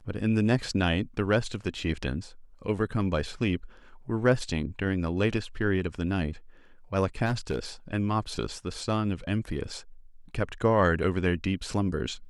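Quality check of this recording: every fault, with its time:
7.25–7.59 s: clipped -23 dBFS

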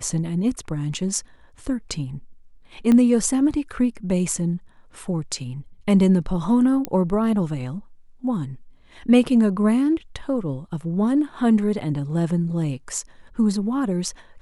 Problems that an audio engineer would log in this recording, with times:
2.92 s: pop -10 dBFS
6.85 s: pop -10 dBFS

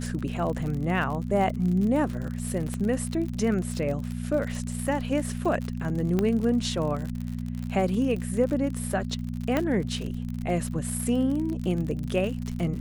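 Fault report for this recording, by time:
crackle 57 per s -31 dBFS
hum 60 Hz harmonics 4 -32 dBFS
2.74 s: pop -19 dBFS
6.19 s: pop -13 dBFS
9.57 s: pop -12 dBFS

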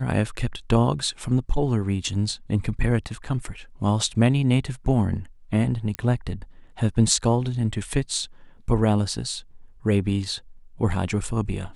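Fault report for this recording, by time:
5.95 s: pop -12 dBFS

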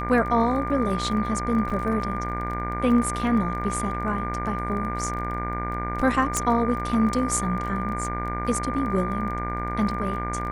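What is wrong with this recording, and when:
buzz 60 Hz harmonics 39 -31 dBFS
crackle 21 per s -32 dBFS
whine 1.2 kHz -30 dBFS
1.70 s: dropout 4.9 ms
6.37 s: pop

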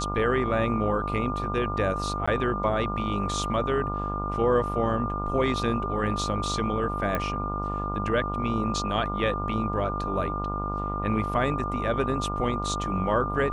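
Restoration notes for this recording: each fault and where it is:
buzz 50 Hz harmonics 28 -32 dBFS
whine 1.2 kHz -31 dBFS
2.26–2.27 s: dropout 15 ms
7.15 s: pop -14 dBFS

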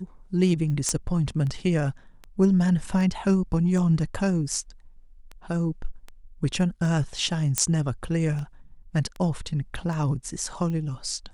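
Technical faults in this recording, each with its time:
tick 78 rpm -24 dBFS
0.89 s: pop -12 dBFS
7.58 s: pop -6 dBFS

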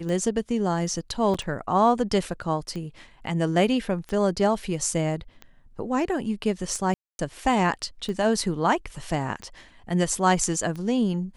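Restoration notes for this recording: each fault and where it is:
tick 45 rpm -23 dBFS
1.34 s: dropout 4.9 ms
6.94–7.19 s: dropout 251 ms

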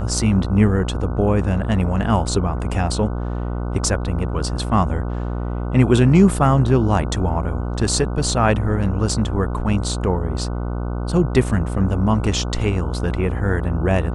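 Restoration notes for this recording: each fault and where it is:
buzz 60 Hz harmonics 25 -24 dBFS

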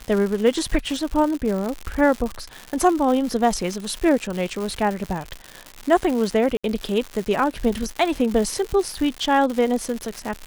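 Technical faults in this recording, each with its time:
crackle 190 per s -25 dBFS
6.57–6.64 s: dropout 66 ms

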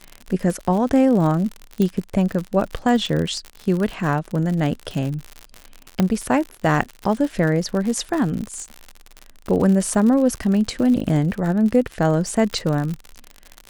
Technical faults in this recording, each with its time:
crackle 71 per s -25 dBFS
1.82 s: pop -10 dBFS
6.00 s: pop -6 dBFS

